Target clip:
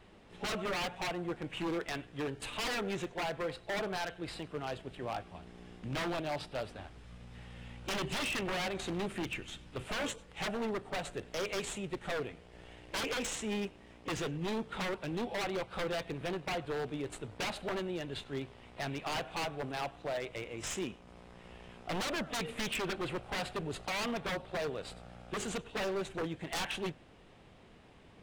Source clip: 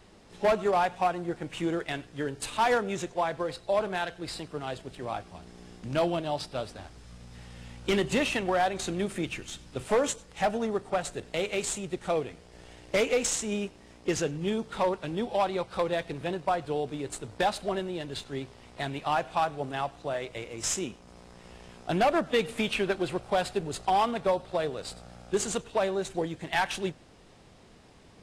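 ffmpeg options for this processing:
-af "highshelf=f=3.9k:t=q:w=1.5:g=-6.5,aeval=exprs='0.0473*(abs(mod(val(0)/0.0473+3,4)-2)-1)':c=same,volume=-3dB"

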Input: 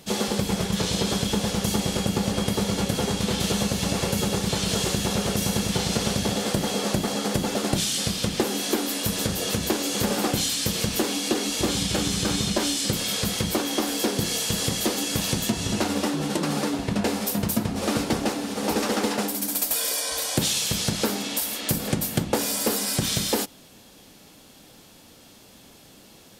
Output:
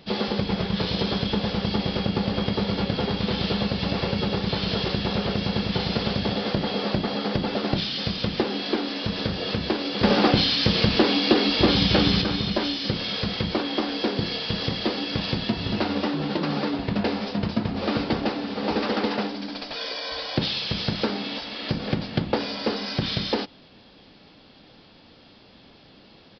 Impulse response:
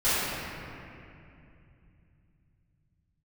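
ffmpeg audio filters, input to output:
-filter_complex "[0:a]asettb=1/sr,asplit=3[a][b][c];[a]atrim=end=10.034[d];[b]atrim=start=10.03:end=12.22,asetpts=PTS-STARTPTS,afade=t=in:d=0.004:c=qsin,afade=t=out:st=2.186:d=0.004:c=qsin,acontrast=63[e];[c]atrim=start=12.216[f];[d][e]acrossfade=d=0.004:c1=hsin:c2=qsin[g];[g][f]acrossfade=d=0.004:c1=qsin:c2=hsin,aresample=11025,aresample=44100"

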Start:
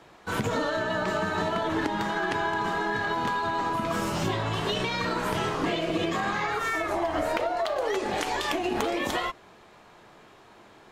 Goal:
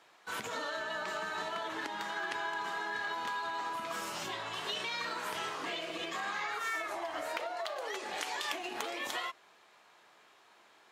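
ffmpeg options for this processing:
-af "highpass=f=1.3k:p=1,volume=-4.5dB"

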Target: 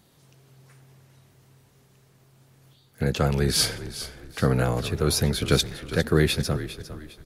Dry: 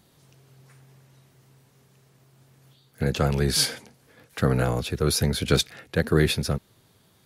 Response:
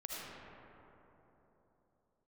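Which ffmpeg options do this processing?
-filter_complex "[0:a]asplit=4[a][b][c][d];[b]adelay=404,afreqshift=-38,volume=-13dB[e];[c]adelay=808,afreqshift=-76,volume=-22.4dB[f];[d]adelay=1212,afreqshift=-114,volume=-31.7dB[g];[a][e][f][g]amix=inputs=4:normalize=0,asplit=2[h][i];[1:a]atrim=start_sample=2205,adelay=15[j];[i][j]afir=irnorm=-1:irlink=0,volume=-22dB[k];[h][k]amix=inputs=2:normalize=0"

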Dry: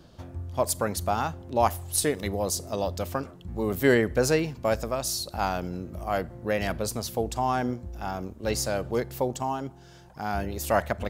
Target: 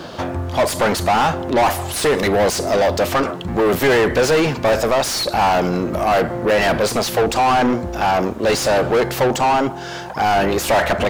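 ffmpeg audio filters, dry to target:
-filter_complex "[0:a]asplit=2[a][b];[b]highpass=f=720:p=1,volume=35dB,asoftclip=type=tanh:threshold=-7dB[c];[a][c]amix=inputs=2:normalize=0,lowpass=f=2.3k:p=1,volume=-6dB,acrusher=bits=9:mix=0:aa=0.000001"

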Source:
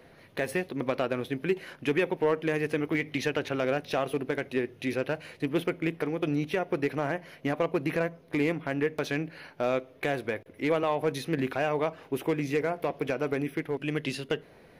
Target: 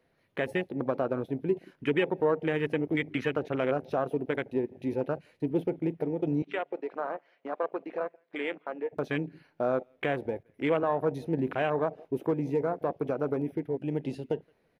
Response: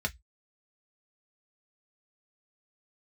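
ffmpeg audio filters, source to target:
-filter_complex "[0:a]asettb=1/sr,asplit=3[a][b][c];[a]atrim=end=6.424[d];[b]atrim=start=6.42:end=8.93,asetpts=PTS-STARTPTS,afade=t=in:d=0.004:c=qsin,afade=t=out:st=2.506:d=0.004:c=qsin,highpass=530,lowpass=3.8k[e];[c]atrim=start=8.926[f];[d][e]acrossfade=d=0.004:c1=hsin:c2=qsin[g];[g][f]acrossfade=d=0.004:c1=qsin:c2=hsin,asplit=2[h][i];[i]adelay=170,lowpass=f=1.4k:p=1,volume=-20dB,asplit=2[j][k];[k]adelay=170,lowpass=f=1.4k:p=1,volume=0.26[l];[h][j][l]amix=inputs=3:normalize=0,afwtdn=0.0224"

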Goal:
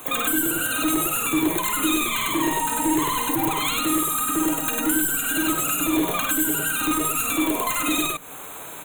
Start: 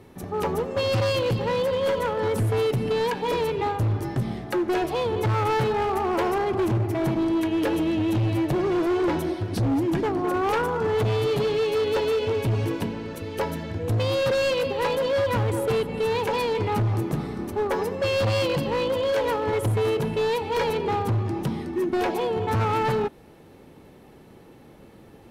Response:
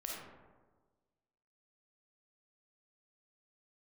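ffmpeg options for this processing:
-filter_complex "[0:a]asuperstop=centerf=1800:order=20:qfactor=2.4,aemphasis=mode=production:type=75kf,asplit=2[a][b];[b]aecho=0:1:145.8|282.8:0.501|0.891[c];[a][c]amix=inputs=2:normalize=0,crystalizer=i=9.5:c=0,asetrate=126126,aresample=44100,acrossover=split=300[d][e];[d]aecho=1:1:6.7:0.48[f];[e]acompressor=threshold=-26dB:ratio=6[g];[f][g]amix=inputs=2:normalize=0,volume=3.5dB"

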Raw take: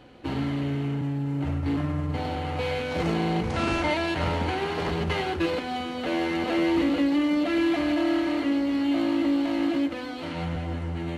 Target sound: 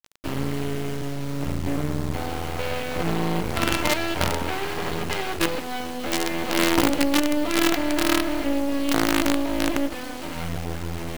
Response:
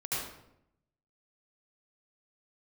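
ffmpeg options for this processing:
-filter_complex "[0:a]asettb=1/sr,asplit=3[a][b][c];[a]atrim=end=4.364[d];[b]atrim=start=4.36:end=6.77,asetpts=PTS-STARTPTS,afade=t=in:d=0.004:c=qsin,afade=t=out:st=2.406:d=0.004:c=qsin,lowshelf=f=120:g=-4.5[e];[c]atrim=start=6.766[f];[d][e]acrossfade=d=0.004:c1=hsin:c2=qsin[g];[g][f]acrossfade=d=0.004:c1=qsin:c2=hsin,acrusher=bits=4:dc=4:mix=0:aa=0.000001,volume=4.5dB"

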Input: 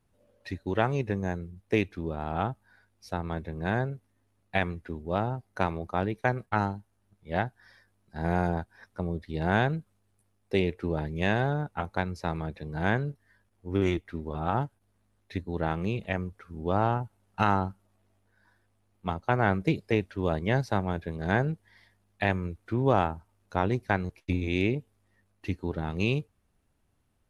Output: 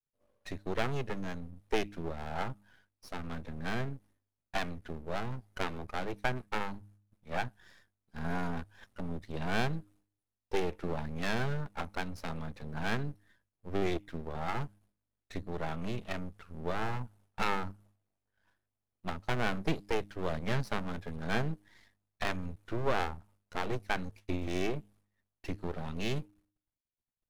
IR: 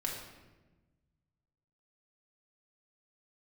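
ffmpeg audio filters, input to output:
-af "aeval=exprs='max(val(0),0)':c=same,agate=range=-33dB:threshold=-59dB:ratio=3:detection=peak,bandreject=f=102.1:t=h:w=4,bandreject=f=204.2:t=h:w=4,bandreject=f=306.3:t=h:w=4,volume=1dB"

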